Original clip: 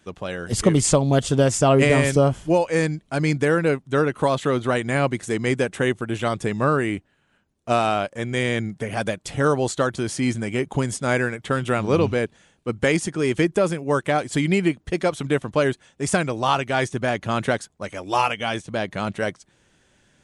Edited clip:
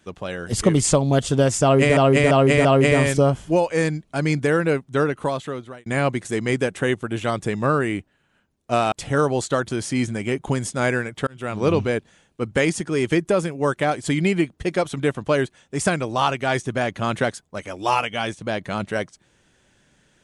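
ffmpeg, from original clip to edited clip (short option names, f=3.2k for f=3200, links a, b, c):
-filter_complex "[0:a]asplit=7[a][b][c][d][e][f][g];[a]atrim=end=1.972[h];[b]atrim=start=1.628:end=1.972[i];[c]atrim=start=1.628:end=1.972[j];[d]atrim=start=1.628:end=4.84,asetpts=PTS-STARTPTS,afade=t=out:st=2.342:d=0.87[k];[e]atrim=start=4.84:end=7.902,asetpts=PTS-STARTPTS,afade=t=in:d=0.004:c=hsin[l];[f]atrim=start=9.188:end=11.54,asetpts=PTS-STARTPTS,afade=t=out:st=2.348:d=0.004:c=hsin[m];[g]atrim=start=11.54,asetpts=PTS-STARTPTS,afade=t=in:d=0.41[n];[h][i]acrossfade=d=0.004:c1=hsin:c2=hsin[o];[o][j]acrossfade=d=0.004:c1=hsin:c2=hsin[p];[k][l]concat=n=2:v=0:a=1[q];[p][q]acrossfade=d=0.004:c1=hsin:c2=hsin[r];[m][n]concat=n=2:v=0:a=1[s];[r][s]acrossfade=d=0.004:c1=hsin:c2=hsin"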